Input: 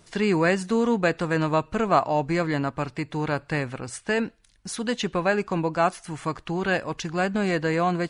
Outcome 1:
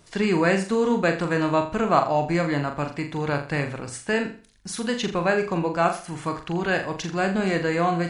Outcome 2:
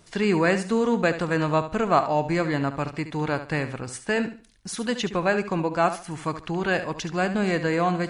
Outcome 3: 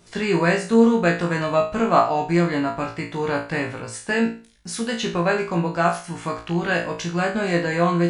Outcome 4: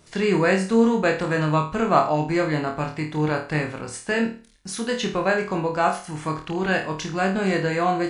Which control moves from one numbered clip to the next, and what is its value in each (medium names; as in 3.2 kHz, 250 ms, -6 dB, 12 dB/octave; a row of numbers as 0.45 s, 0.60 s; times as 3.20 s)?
flutter echo, walls apart: 7.1 m, 12.3 m, 3 m, 4.5 m